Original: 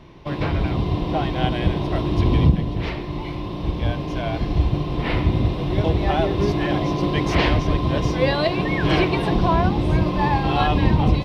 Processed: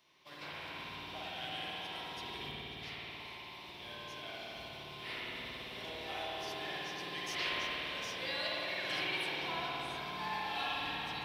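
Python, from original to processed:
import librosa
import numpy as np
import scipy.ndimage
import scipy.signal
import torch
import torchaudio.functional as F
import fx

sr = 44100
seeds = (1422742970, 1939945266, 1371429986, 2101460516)

y = np.diff(x, prepend=0.0)
y = fx.rev_spring(y, sr, rt60_s=3.8, pass_ms=(54,), chirp_ms=35, drr_db=-6.0)
y = y * librosa.db_to_amplitude(-6.0)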